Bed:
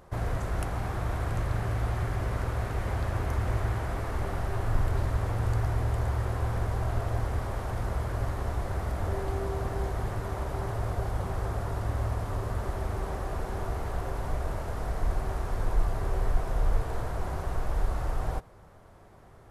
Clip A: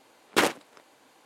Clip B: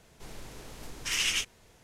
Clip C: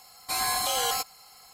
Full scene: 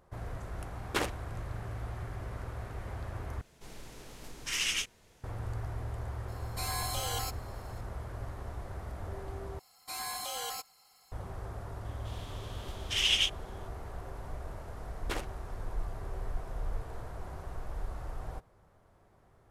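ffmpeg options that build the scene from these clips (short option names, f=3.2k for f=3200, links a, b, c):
-filter_complex "[1:a]asplit=2[a][b];[2:a]asplit=2[c][d];[3:a]asplit=2[e][f];[0:a]volume=-10dB[g];[d]equalizer=f=3.3k:t=o:w=0.54:g=15[h];[g]asplit=3[i][j][k];[i]atrim=end=3.414[l];[c]atrim=end=1.83,asetpts=PTS-STARTPTS,volume=-3dB[m];[j]atrim=start=5.236:end=9.594[n];[f]atrim=end=1.53,asetpts=PTS-STARTPTS,volume=-11dB[o];[k]atrim=start=11.116[p];[a]atrim=end=1.25,asetpts=PTS-STARTPTS,volume=-9.5dB,afade=t=in:d=0.004:c=hsin,afade=t=out:st=1.246:d=0.004:c=hsin,adelay=580[q];[e]atrim=end=1.53,asetpts=PTS-STARTPTS,volume=-9dB,afade=t=in:d=0.004:c=hsin,afade=t=out:st=1.526:d=0.004:c=hsin,adelay=6280[r];[h]atrim=end=1.83,asetpts=PTS-STARTPTS,volume=-7dB,afade=t=in:d=0.004:c=hsin,afade=t=out:st=1.826:d=0.004:c=hsin,adelay=11850[s];[b]atrim=end=1.25,asetpts=PTS-STARTPTS,volume=-15.5dB,afade=t=in:d=0.004:c=hsin,afade=t=out:st=1.246:d=0.004:c=hsin,adelay=14730[t];[l][m]acrossfade=d=0.004:c1=hsin:c2=hsin[u];[u][n]acrossfade=d=0.004:c1=hsin:c2=hsin[v];[v][o]acrossfade=d=0.004:c1=hsin:c2=hsin[w];[w][p]acrossfade=d=0.004:c1=hsin:c2=hsin[x];[x][q][r][s][t]amix=inputs=5:normalize=0"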